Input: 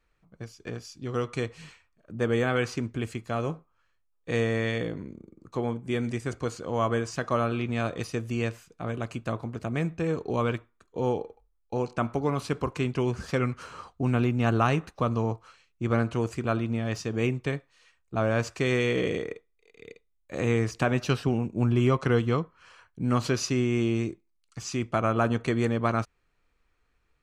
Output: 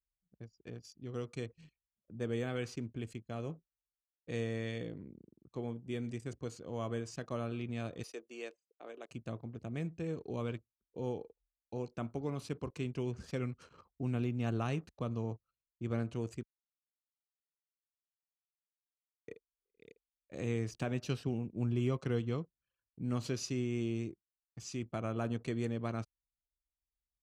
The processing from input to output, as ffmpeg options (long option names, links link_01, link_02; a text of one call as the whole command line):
ffmpeg -i in.wav -filter_complex "[0:a]asettb=1/sr,asplit=3[link_01][link_02][link_03];[link_01]atrim=end=8.034[link_04];[link_02]atrim=start=8.03:end=9.11,asetpts=PTS-STARTPTS,afade=type=in:duration=0.004:curve=qsin,afade=type=out:start_time=1.076:duration=0.004:curve=qsin,highpass=frequency=360:width=0.5412,highpass=frequency=360:width=1.3066[link_05];[link_03]atrim=start=9.106[link_06];[link_04][link_05]acrossfade=duration=0.004:curve1=hsin:curve2=qsin[link_07];[link_07][link_06]acrossfade=duration=0.004:curve1=qsin:curve2=hsin,asplit=3[link_08][link_09][link_10];[link_08]atrim=end=16.43,asetpts=PTS-STARTPTS,afade=type=out:start_time=16.426:duration=0.004:curve=hsin[link_11];[link_09]atrim=start=16.43:end=19.28,asetpts=PTS-STARTPTS,volume=0[link_12];[link_10]atrim=start=19.28,asetpts=PTS-STARTPTS,afade=type=in:duration=0.004:curve=hsin[link_13];[link_11][link_12][link_13]concat=n=3:v=0:a=1,highpass=57,equalizer=frequency=1200:width=0.78:gain=-8.5,anlmdn=0.0158,volume=-9dB" out.wav